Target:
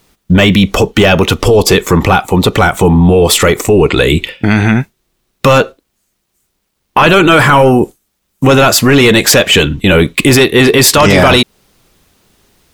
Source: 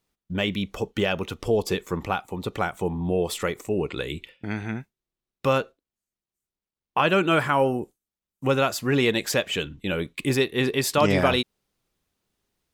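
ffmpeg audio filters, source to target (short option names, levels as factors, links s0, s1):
-filter_complex "[0:a]asplit=2[s0][s1];[s1]acompressor=threshold=0.0316:ratio=5,volume=0.891[s2];[s0][s2]amix=inputs=2:normalize=0,apsyclip=12.6,volume=0.794"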